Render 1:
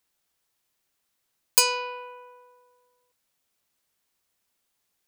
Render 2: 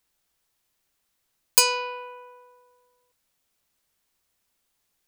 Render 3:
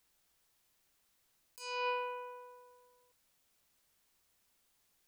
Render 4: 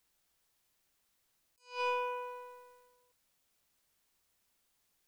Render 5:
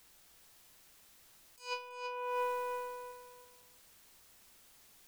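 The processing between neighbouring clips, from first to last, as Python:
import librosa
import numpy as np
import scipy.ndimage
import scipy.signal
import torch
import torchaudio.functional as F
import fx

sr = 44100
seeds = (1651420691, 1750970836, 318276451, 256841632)

y1 = fx.low_shelf(x, sr, hz=65.0, db=9.0)
y1 = F.gain(torch.from_numpy(y1), 1.5).numpy()
y2 = fx.over_compress(y1, sr, threshold_db=-33.0, ratio=-1.0)
y2 = F.gain(torch.from_numpy(y2), -7.0).numpy()
y3 = fx.leveller(y2, sr, passes=1)
y3 = fx.attack_slew(y3, sr, db_per_s=190.0)
y4 = fx.over_compress(y3, sr, threshold_db=-48.0, ratio=-1.0)
y4 = fx.echo_feedback(y4, sr, ms=330, feedback_pct=26, wet_db=-8.5)
y4 = F.gain(torch.from_numpy(y4), 6.5).numpy()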